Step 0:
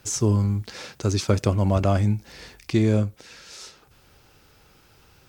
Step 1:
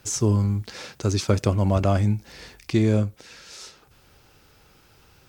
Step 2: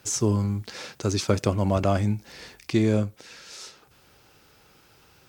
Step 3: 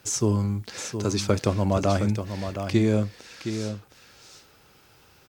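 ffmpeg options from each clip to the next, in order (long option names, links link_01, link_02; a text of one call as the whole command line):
ffmpeg -i in.wav -af anull out.wav
ffmpeg -i in.wav -af "lowshelf=frequency=73:gain=-12" out.wav
ffmpeg -i in.wav -af "aecho=1:1:716:0.376" out.wav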